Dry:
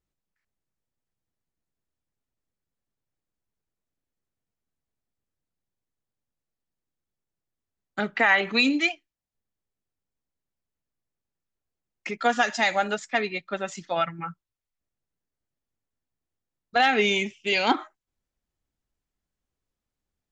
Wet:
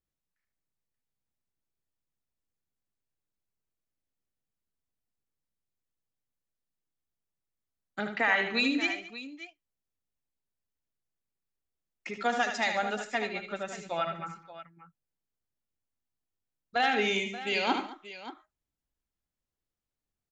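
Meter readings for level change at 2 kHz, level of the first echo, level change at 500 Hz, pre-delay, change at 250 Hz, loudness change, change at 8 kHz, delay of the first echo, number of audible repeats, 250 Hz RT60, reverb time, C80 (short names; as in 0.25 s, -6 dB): -5.5 dB, -7.0 dB, -5.5 dB, none, -5.5 dB, -5.5 dB, -5.5 dB, 76 ms, 4, none, none, none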